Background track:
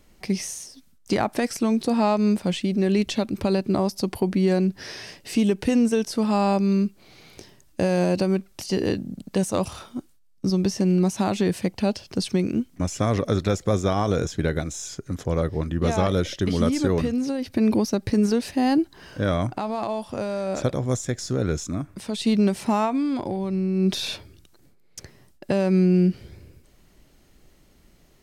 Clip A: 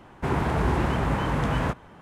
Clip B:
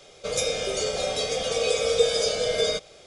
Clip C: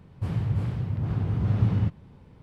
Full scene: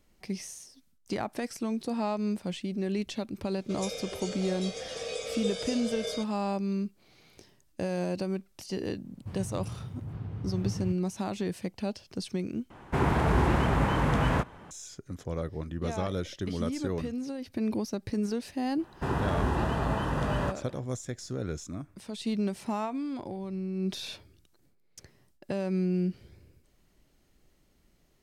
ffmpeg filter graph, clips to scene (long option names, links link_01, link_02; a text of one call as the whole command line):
ffmpeg -i bed.wav -i cue0.wav -i cue1.wav -i cue2.wav -filter_complex "[1:a]asplit=2[link_01][link_02];[0:a]volume=-10dB[link_03];[link_02]asuperstop=centerf=2200:order=4:qfactor=6.4[link_04];[link_03]asplit=2[link_05][link_06];[link_05]atrim=end=12.704[link_07];[link_01]atrim=end=2.01,asetpts=PTS-STARTPTS,volume=-0.5dB[link_08];[link_06]atrim=start=14.706[link_09];[2:a]atrim=end=3.06,asetpts=PTS-STARTPTS,volume=-12dB,afade=type=in:duration=0.004:curve=hsin,afade=type=out:start_time=3.056:duration=0.004:curve=hsin,adelay=152145S[link_10];[3:a]atrim=end=2.42,asetpts=PTS-STARTPTS,volume=-11dB,afade=type=in:duration=0.004:curve=hsin,afade=type=out:start_time=2.416:duration=0.004:curve=hsin,adelay=9040[link_11];[link_04]atrim=end=2.01,asetpts=PTS-STARTPTS,volume=-4.5dB,afade=type=in:duration=0.004:curve=hsin,afade=type=out:start_time=2.006:duration=0.004:curve=hsin,adelay=18790[link_12];[link_07][link_08]acrossfade=duration=0.004:curve1=hsin:curve2=hsin[link_13];[link_13][link_09]acrossfade=duration=0.004:curve1=hsin:curve2=hsin[link_14];[link_14][link_10][link_11][link_12]amix=inputs=4:normalize=0" out.wav